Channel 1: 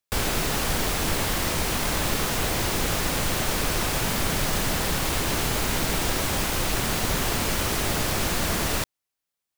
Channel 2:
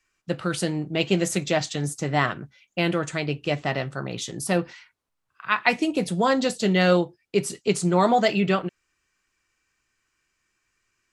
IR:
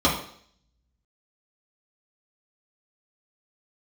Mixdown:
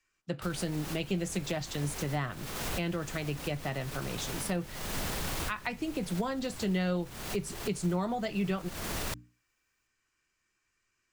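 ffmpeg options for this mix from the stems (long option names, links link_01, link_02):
-filter_complex "[0:a]bandreject=frequency=60:width_type=h:width=6,bandreject=frequency=120:width_type=h:width=6,bandreject=frequency=180:width_type=h:width=6,bandreject=frequency=240:width_type=h:width=6,bandreject=frequency=300:width_type=h:width=6,alimiter=limit=-21dB:level=0:latency=1:release=54,adelay=300,volume=-2dB[link_01];[1:a]volume=-5dB,asplit=2[link_02][link_03];[link_03]apad=whole_len=435352[link_04];[link_01][link_04]sidechaincompress=threshold=-37dB:ratio=6:attack=9.4:release=341[link_05];[link_05][link_02]amix=inputs=2:normalize=0,acrossover=split=190[link_06][link_07];[link_07]acompressor=threshold=-33dB:ratio=4[link_08];[link_06][link_08]amix=inputs=2:normalize=0"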